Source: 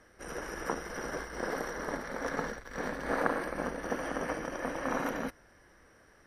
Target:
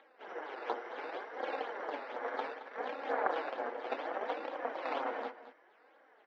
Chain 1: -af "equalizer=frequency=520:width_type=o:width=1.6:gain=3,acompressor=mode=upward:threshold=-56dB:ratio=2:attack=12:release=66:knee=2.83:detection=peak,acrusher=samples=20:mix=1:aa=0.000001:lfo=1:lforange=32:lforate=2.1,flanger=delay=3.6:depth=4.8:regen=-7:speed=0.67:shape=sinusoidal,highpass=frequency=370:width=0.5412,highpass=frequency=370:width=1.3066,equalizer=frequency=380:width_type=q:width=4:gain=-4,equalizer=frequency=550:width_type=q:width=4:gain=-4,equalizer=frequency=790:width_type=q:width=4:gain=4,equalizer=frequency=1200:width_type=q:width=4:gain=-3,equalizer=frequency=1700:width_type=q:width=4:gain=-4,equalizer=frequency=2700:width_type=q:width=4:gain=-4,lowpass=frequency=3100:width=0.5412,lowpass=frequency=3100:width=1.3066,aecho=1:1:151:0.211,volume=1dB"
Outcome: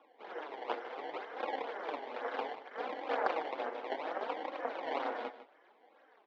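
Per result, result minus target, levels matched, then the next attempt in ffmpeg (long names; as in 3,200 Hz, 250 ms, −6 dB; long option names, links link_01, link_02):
echo 69 ms early; sample-and-hold swept by an LFO: distortion +8 dB
-af "equalizer=frequency=520:width_type=o:width=1.6:gain=3,acompressor=mode=upward:threshold=-56dB:ratio=2:attack=12:release=66:knee=2.83:detection=peak,acrusher=samples=20:mix=1:aa=0.000001:lfo=1:lforange=32:lforate=2.1,flanger=delay=3.6:depth=4.8:regen=-7:speed=0.67:shape=sinusoidal,highpass=frequency=370:width=0.5412,highpass=frequency=370:width=1.3066,equalizer=frequency=380:width_type=q:width=4:gain=-4,equalizer=frequency=550:width_type=q:width=4:gain=-4,equalizer=frequency=790:width_type=q:width=4:gain=4,equalizer=frequency=1200:width_type=q:width=4:gain=-3,equalizer=frequency=1700:width_type=q:width=4:gain=-4,equalizer=frequency=2700:width_type=q:width=4:gain=-4,lowpass=frequency=3100:width=0.5412,lowpass=frequency=3100:width=1.3066,aecho=1:1:220:0.211,volume=1dB"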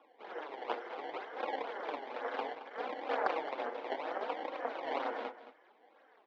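sample-and-hold swept by an LFO: distortion +8 dB
-af "equalizer=frequency=520:width_type=o:width=1.6:gain=3,acompressor=mode=upward:threshold=-56dB:ratio=2:attack=12:release=66:knee=2.83:detection=peak,acrusher=samples=8:mix=1:aa=0.000001:lfo=1:lforange=12.8:lforate=2.1,flanger=delay=3.6:depth=4.8:regen=-7:speed=0.67:shape=sinusoidal,highpass=frequency=370:width=0.5412,highpass=frequency=370:width=1.3066,equalizer=frequency=380:width_type=q:width=4:gain=-4,equalizer=frequency=550:width_type=q:width=4:gain=-4,equalizer=frequency=790:width_type=q:width=4:gain=4,equalizer=frequency=1200:width_type=q:width=4:gain=-3,equalizer=frequency=1700:width_type=q:width=4:gain=-4,equalizer=frequency=2700:width_type=q:width=4:gain=-4,lowpass=frequency=3100:width=0.5412,lowpass=frequency=3100:width=1.3066,aecho=1:1:220:0.211,volume=1dB"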